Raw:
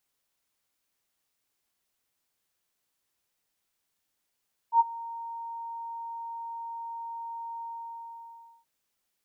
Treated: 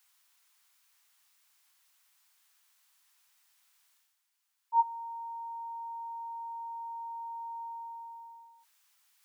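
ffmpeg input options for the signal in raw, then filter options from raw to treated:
-f lavfi -i "aevalsrc='0.188*sin(2*PI*925*t)':duration=3.93:sample_rate=44100,afade=type=in:duration=0.077,afade=type=out:start_time=0.077:duration=0.03:silence=0.0944,afade=type=out:start_time=2.9:duration=1.03"
-af "highpass=frequency=890:width=0.5412,highpass=frequency=890:width=1.3066,areverse,acompressor=mode=upward:threshold=-58dB:ratio=2.5,areverse"

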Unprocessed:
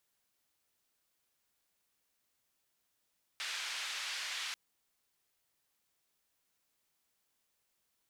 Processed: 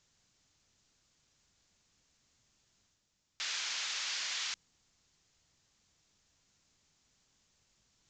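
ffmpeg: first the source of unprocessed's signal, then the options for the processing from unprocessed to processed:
-f lavfi -i "anoisesrc=color=white:duration=1.14:sample_rate=44100:seed=1,highpass=frequency=1500,lowpass=frequency=4100,volume=-26.3dB"
-af "bass=frequency=250:gain=13,treble=frequency=4000:gain=7,areverse,acompressor=mode=upward:threshold=-59dB:ratio=2.5,areverse,aresample=16000,aresample=44100"

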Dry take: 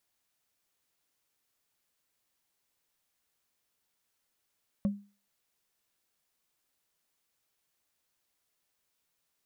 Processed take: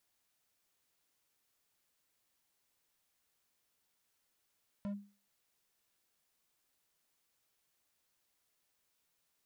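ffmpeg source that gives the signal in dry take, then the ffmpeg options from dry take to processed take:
-f lavfi -i "aevalsrc='0.0794*pow(10,-3*t/0.34)*sin(2*PI*202*t)+0.02*pow(10,-3*t/0.101)*sin(2*PI*556.9*t)+0.00501*pow(10,-3*t/0.045)*sin(2*PI*1091.6*t)+0.00126*pow(10,-3*t/0.025)*sin(2*PI*1804.5*t)+0.000316*pow(10,-3*t/0.015)*sin(2*PI*2694.7*t)':duration=0.45:sample_rate=44100"
-af "alimiter=level_in=4dB:limit=-24dB:level=0:latency=1:release=58,volume=-4dB,asoftclip=type=hard:threshold=-38dB"

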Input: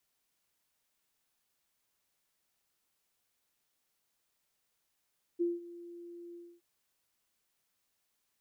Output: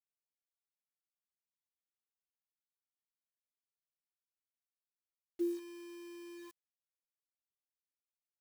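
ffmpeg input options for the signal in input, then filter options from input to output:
-f lavfi -i "aevalsrc='0.0473*sin(2*PI*345*t)':duration=1.219:sample_rate=44100,afade=type=in:duration=0.024,afade=type=out:start_time=0.024:duration=0.183:silence=0.119,afade=type=out:start_time=0.96:duration=0.259"
-af "highpass=frequency=190:poles=1,acrusher=bits=8:mix=0:aa=0.000001"

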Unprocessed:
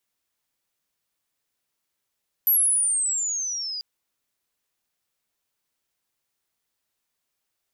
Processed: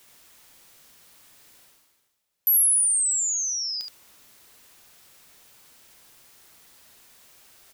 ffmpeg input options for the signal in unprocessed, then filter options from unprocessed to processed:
-f lavfi -i "aevalsrc='pow(10,(-15.5-13.5*t/1.34)/20)*sin(2*PI*12000*1.34/log(4800/12000)*(exp(log(4800/12000)*t/1.34)-1))':duration=1.34:sample_rate=44100"
-af "areverse,acompressor=mode=upward:threshold=-35dB:ratio=2.5,areverse,aecho=1:1:34|72:0.2|0.531"

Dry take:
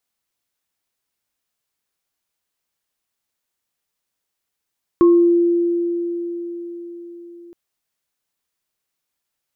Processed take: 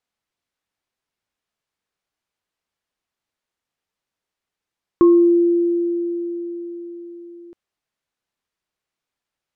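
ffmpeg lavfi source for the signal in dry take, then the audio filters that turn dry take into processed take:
-f lavfi -i "aevalsrc='0.422*pow(10,-3*t/4.87)*sin(2*PI*344*t)+0.106*pow(10,-3*t/0.43)*sin(2*PI*1080*t)':duration=2.52:sample_rate=44100"
-af "aemphasis=mode=reproduction:type=50fm"

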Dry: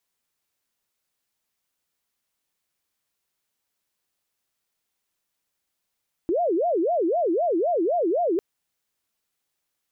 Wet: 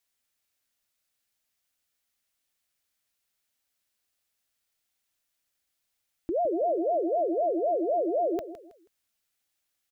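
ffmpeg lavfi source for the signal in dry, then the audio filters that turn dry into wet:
-f lavfi -i "aevalsrc='0.106*sin(2*PI*(517.5*t-194.5/(2*PI*3.9)*sin(2*PI*3.9*t)))':duration=2.1:sample_rate=44100"
-filter_complex "[0:a]equalizer=frequency=160:width_type=o:width=0.67:gain=-8,equalizer=frequency=400:width_type=o:width=0.67:gain=-7,equalizer=frequency=1000:width_type=o:width=0.67:gain=-6,asplit=2[link_01][link_02];[link_02]aecho=0:1:161|322|483:0.237|0.0735|0.0228[link_03];[link_01][link_03]amix=inputs=2:normalize=0"

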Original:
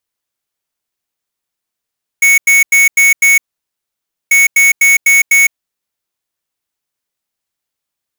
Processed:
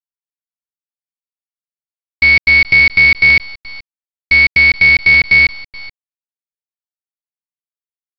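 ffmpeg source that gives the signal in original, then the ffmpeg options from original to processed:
-f lavfi -i "aevalsrc='0.422*(2*lt(mod(2220*t,1),0.5)-1)*clip(min(mod(mod(t,2.09),0.25),0.16-mod(mod(t,2.09),0.25))/0.005,0,1)*lt(mod(t,2.09),1.25)':duration=4.18:sample_rate=44100"
-af "afftfilt=real='re*gte(hypot(re,im),0.0501)':imag='im*gte(hypot(re,im),0.0501)':win_size=1024:overlap=0.75,aecho=1:1:427:0.141,aresample=11025,acrusher=bits=3:dc=4:mix=0:aa=0.000001,aresample=44100"

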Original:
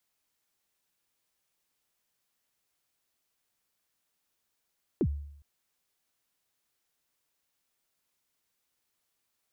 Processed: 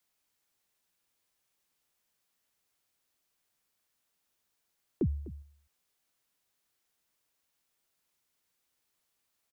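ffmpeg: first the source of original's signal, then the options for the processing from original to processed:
-f lavfi -i "aevalsrc='0.0891*pow(10,-3*t/0.73)*sin(2*PI*(430*0.062/log(72/430)*(exp(log(72/430)*min(t,0.062)/0.062)-1)+72*max(t-0.062,0)))':duration=0.41:sample_rate=44100"
-filter_complex "[0:a]acrossover=split=200|520[link_01][link_02][link_03];[link_03]alimiter=level_in=18dB:limit=-24dB:level=0:latency=1:release=84,volume=-18dB[link_04];[link_01][link_02][link_04]amix=inputs=3:normalize=0,asplit=2[link_05][link_06];[link_06]adelay=250.7,volume=-17dB,highshelf=frequency=4000:gain=-5.64[link_07];[link_05][link_07]amix=inputs=2:normalize=0"

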